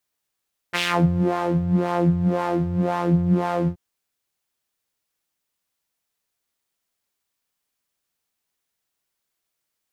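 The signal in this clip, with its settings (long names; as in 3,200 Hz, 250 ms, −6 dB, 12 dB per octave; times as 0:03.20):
subtractive patch with filter wobble F3, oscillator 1 saw, interval 0 semitones, sub −18 dB, noise −11 dB, filter bandpass, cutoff 290 Hz, Q 1.9, filter envelope 2.5 octaves, filter decay 0.33 s, filter sustain 0%, attack 24 ms, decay 0.60 s, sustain −5.5 dB, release 0.08 s, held 2.95 s, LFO 1.9 Hz, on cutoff 1.7 octaves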